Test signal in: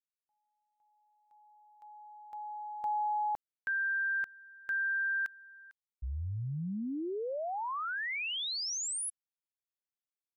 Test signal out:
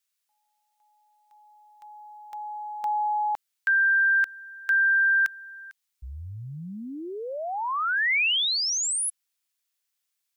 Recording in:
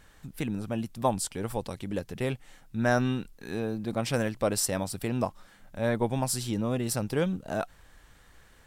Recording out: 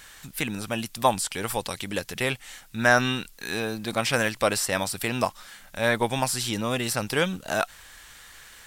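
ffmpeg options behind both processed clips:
-filter_complex "[0:a]tiltshelf=f=970:g=-9,acrossover=split=2500[s0][s1];[s1]acompressor=threshold=0.02:ratio=4:attack=1:release=60[s2];[s0][s2]amix=inputs=2:normalize=0,volume=2.37"

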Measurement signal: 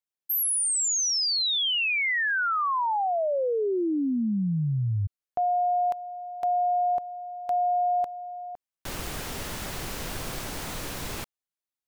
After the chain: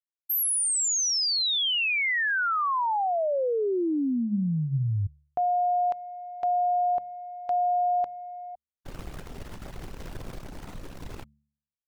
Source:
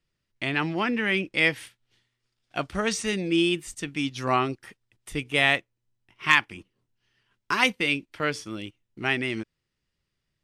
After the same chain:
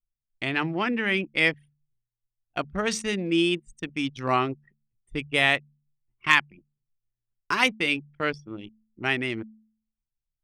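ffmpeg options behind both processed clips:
-af "anlmdn=15.8,bandreject=f=72.83:t=h:w=4,bandreject=f=145.66:t=h:w=4,bandreject=f=218.49:t=h:w=4"

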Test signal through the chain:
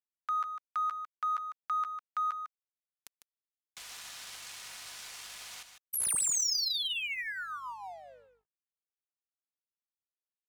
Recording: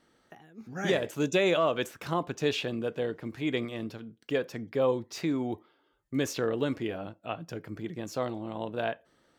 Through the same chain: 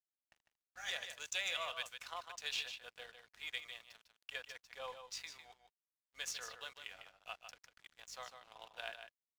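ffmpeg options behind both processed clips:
-filter_complex "[0:a]highpass=f=610:w=0.5412,highpass=f=610:w=1.3066,aderivative,aecho=1:1:4.1:0.33,asplit=2[s0][s1];[s1]acompressor=threshold=0.00631:ratio=6,volume=0.708[s2];[s0][s2]amix=inputs=2:normalize=0,aeval=exprs='val(0)+0.000282*(sin(2*PI*50*n/s)+sin(2*PI*2*50*n/s)/2+sin(2*PI*3*50*n/s)/3+sin(2*PI*4*50*n/s)/4+sin(2*PI*5*50*n/s)/5)':c=same,adynamicsmooth=sensitivity=5.5:basefreq=4000,aeval=exprs='sgn(val(0))*max(abs(val(0))-0.00112,0)':c=same,asplit=2[s3][s4];[s4]aecho=0:1:151:0.376[s5];[s3][s5]amix=inputs=2:normalize=0,volume=1.12"

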